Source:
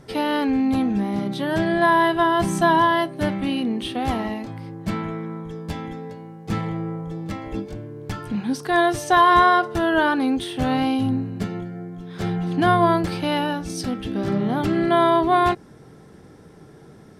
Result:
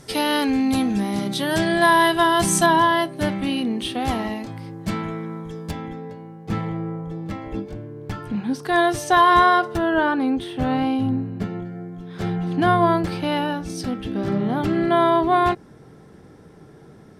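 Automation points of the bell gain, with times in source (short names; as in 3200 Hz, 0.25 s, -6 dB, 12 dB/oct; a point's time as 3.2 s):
bell 8900 Hz 2.5 oct
+13.5 dB
from 2.66 s +5 dB
from 5.71 s -5.5 dB
from 8.65 s +1.5 dB
from 9.77 s -9 dB
from 11.65 s -3 dB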